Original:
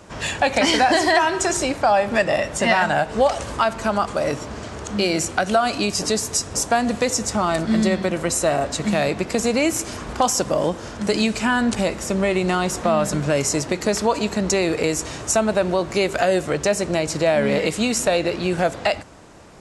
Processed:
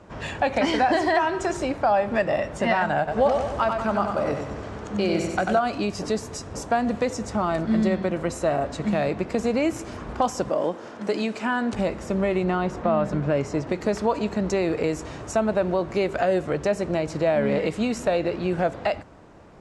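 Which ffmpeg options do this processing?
-filter_complex "[0:a]asettb=1/sr,asplit=3[a][b][c];[a]atrim=end=2.984[d];[b]atrim=start=2.98:end=5.59,asetpts=PTS-STARTPTS,afade=t=in:d=0.004:c=qsin,afade=t=out:st=2.606:d=0.004:c=qsin,aecho=1:1:94|188|282|376|470|564|658:0.562|0.304|0.164|0.0885|0.0478|0.0258|0.0139,atrim=end_sample=115101[e];[c]atrim=start=5.586[f];[d][e]acrossfade=d=0.004:c1=hsin:c2=qsin[g];[g][f]acrossfade=d=0.004:c1=qsin:c2=hsin,asettb=1/sr,asplit=3[h][i][j];[h]atrim=end=10.504[k];[i]atrim=start=10.5:end=11.73,asetpts=PTS-STARTPTS,afade=t=in:d=0.004:c=qsin,afade=t=out:st=1.226:d=0.004:c=qsin,highpass=250[l];[j]atrim=start=11.726[m];[k][l]acrossfade=d=0.004:c1=hsin:c2=qsin[n];[n][m]acrossfade=d=0.004:c1=qsin:c2=hsin,asettb=1/sr,asplit=3[o][p][q];[o]atrim=end=12.444[r];[p]atrim=start=12.44:end=13.67,asetpts=PTS-STARTPTS,afade=t=in:d=0.004:c=qsin,afade=t=out:st=1.226:d=0.004:c=qsin,aemphasis=mode=reproduction:type=50fm[s];[q]atrim=start=13.666[t];[r][s]acrossfade=d=0.004:c1=hsin:c2=qsin[u];[u][t]acrossfade=d=0.004:c1=qsin:c2=hsin,lowpass=f=1.5k:p=1,volume=-2.5dB"

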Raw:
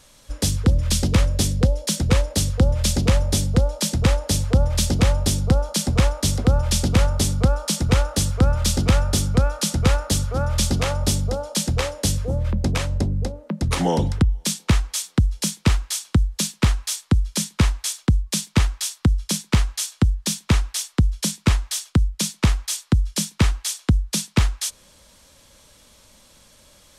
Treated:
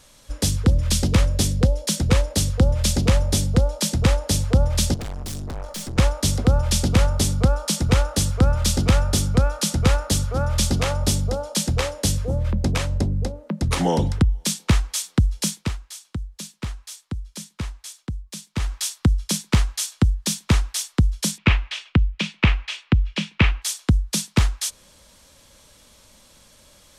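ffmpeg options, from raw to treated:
-filter_complex "[0:a]asettb=1/sr,asplit=3[a][b][c];[a]atrim=end=4.944[d];[b]atrim=start=4.94:end=5.98,asetpts=PTS-STARTPTS,afade=t=in:d=0.004:c=qsin,afade=t=out:st=1.036:d=0.004:c=qsin,aeval=exprs='(tanh(28.2*val(0)+0.45)-tanh(0.45))/28.2':c=same[e];[c]atrim=start=5.976[f];[d][e]acrossfade=d=0.004:c1=hsin:c2=qsin[g];[g][f]acrossfade=d=0.004:c1=qsin:c2=hsin,asettb=1/sr,asplit=3[h][i][j];[h]atrim=end=21.384[k];[i]atrim=start=21.38:end=23.62,asetpts=PTS-STARTPTS,afade=t=in:d=0.004:c=qsin,afade=t=out:st=2.236:d=0.004:c=qsin,lowpass=f=2.6k:t=q:w=3.2[l];[j]atrim=start=23.616[m];[k][l]acrossfade=d=0.004:c1=hsin:c2=qsin[n];[n][m]acrossfade=d=0.004:c1=qsin:c2=hsin,asplit=3[o][p][q];[o]atrim=end=15.79,asetpts=PTS-STARTPTS,afade=t=out:st=15.54:d=0.25:c=qua:silence=0.251189[r];[p]atrim=start=15.79:end=18.48,asetpts=PTS-STARTPTS,volume=-12dB[s];[q]atrim=start=18.48,asetpts=PTS-STARTPTS,afade=t=in:d=0.25:c=qua:silence=0.251189[t];[r][s][t]concat=n=3:v=0:a=1"

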